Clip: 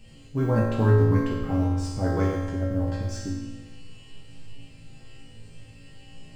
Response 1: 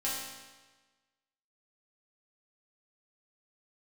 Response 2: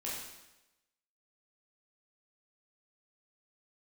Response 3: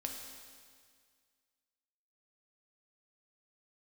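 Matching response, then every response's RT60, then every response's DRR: 1; 1.3, 1.0, 1.9 s; -8.0, -6.5, 1.5 dB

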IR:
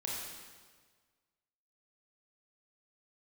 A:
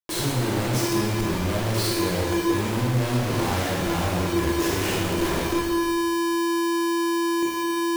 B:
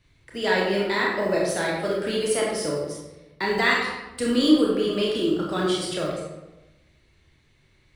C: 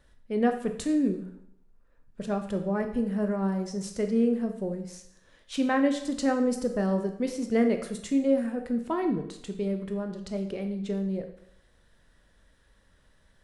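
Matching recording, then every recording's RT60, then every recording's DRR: A; 1.5, 1.0, 0.75 s; -4.5, -3.5, 5.5 dB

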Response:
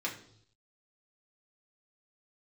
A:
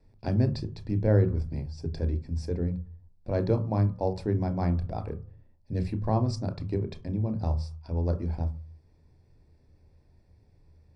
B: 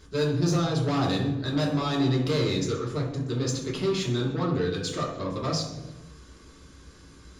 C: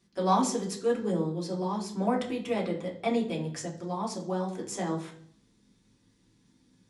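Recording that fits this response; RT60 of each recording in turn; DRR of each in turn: C; 0.45, 1.1, 0.65 s; 8.5, -5.5, -3.0 dB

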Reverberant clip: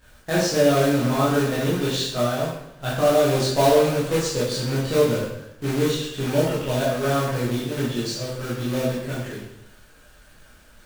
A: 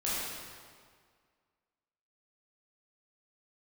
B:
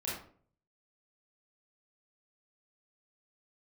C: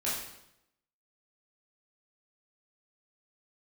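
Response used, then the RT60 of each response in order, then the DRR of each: C; 1.9, 0.50, 0.80 s; -9.0, -7.5, -9.0 dB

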